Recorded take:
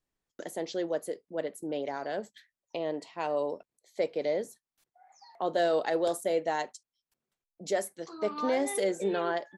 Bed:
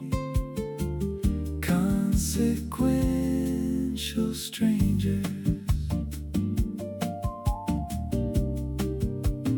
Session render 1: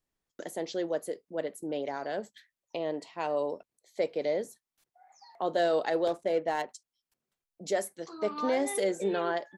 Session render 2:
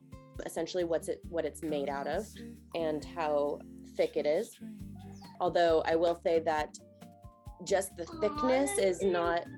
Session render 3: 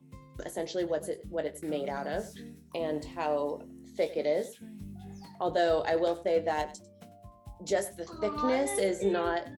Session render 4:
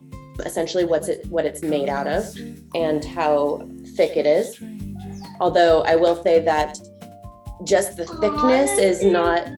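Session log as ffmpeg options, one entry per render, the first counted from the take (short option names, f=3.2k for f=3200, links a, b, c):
-filter_complex "[0:a]asettb=1/sr,asplit=3[a][b][c];[a]atrim=end=6.074[d];[b]atrim=start=6.07:end=6.69,asetpts=PTS-STARTPTS,afade=t=in:d=0.004:c=qsin,afade=t=out:st=0.616:d=0.004:c=qsin,adynamicsmooth=sensitivity=7:basefreq=1.9k[e];[c]atrim=start=6.686[f];[d][e]acrossfade=d=0.004:c1=hsin:c2=qsin[g];[g][f]acrossfade=d=0.004:c1=qsin:c2=hsin"
-filter_complex "[1:a]volume=-22dB[a];[0:a][a]amix=inputs=2:normalize=0"
-filter_complex "[0:a]asplit=2[a][b];[b]adelay=20,volume=-9dB[c];[a][c]amix=inputs=2:normalize=0,aecho=1:1:97:0.141"
-af "volume=11.5dB"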